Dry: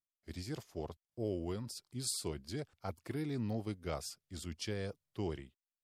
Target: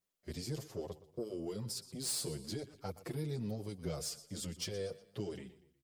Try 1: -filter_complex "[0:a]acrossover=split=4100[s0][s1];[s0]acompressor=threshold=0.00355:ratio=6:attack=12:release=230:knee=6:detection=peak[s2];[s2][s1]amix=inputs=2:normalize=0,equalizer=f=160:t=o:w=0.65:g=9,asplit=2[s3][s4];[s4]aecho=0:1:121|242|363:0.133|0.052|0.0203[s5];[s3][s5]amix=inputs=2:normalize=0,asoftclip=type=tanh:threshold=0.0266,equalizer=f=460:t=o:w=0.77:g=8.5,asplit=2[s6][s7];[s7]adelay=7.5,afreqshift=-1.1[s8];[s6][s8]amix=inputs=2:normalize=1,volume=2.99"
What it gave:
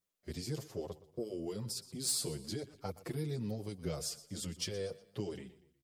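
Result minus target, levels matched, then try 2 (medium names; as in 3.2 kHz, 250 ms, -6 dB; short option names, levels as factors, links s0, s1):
saturation: distortion -8 dB
-filter_complex "[0:a]acrossover=split=4100[s0][s1];[s0]acompressor=threshold=0.00355:ratio=6:attack=12:release=230:knee=6:detection=peak[s2];[s2][s1]amix=inputs=2:normalize=0,equalizer=f=160:t=o:w=0.65:g=9,asplit=2[s3][s4];[s4]aecho=0:1:121|242|363:0.133|0.052|0.0203[s5];[s3][s5]amix=inputs=2:normalize=0,asoftclip=type=tanh:threshold=0.0112,equalizer=f=460:t=o:w=0.77:g=8.5,asplit=2[s6][s7];[s7]adelay=7.5,afreqshift=-1.1[s8];[s6][s8]amix=inputs=2:normalize=1,volume=2.99"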